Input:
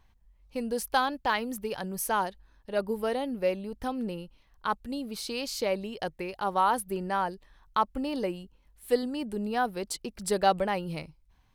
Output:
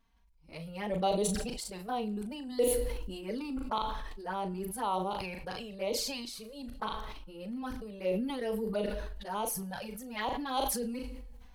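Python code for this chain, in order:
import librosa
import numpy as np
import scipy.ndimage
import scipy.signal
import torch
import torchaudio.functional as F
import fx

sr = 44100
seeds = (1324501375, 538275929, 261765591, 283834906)

y = x[::-1].copy()
y = fx.env_flanger(y, sr, rest_ms=4.5, full_db=-24.0)
y = fx.doubler(y, sr, ms=38.0, db=-11.0)
y = fx.rev_double_slope(y, sr, seeds[0], early_s=0.59, late_s=1.6, knee_db=-24, drr_db=17.5)
y = fx.sustainer(y, sr, db_per_s=31.0)
y = y * 10.0 ** (-4.0 / 20.0)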